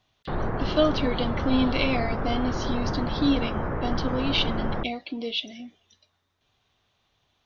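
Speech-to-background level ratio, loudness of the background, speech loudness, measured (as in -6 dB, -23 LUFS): 2.5 dB, -30.5 LUFS, -28.0 LUFS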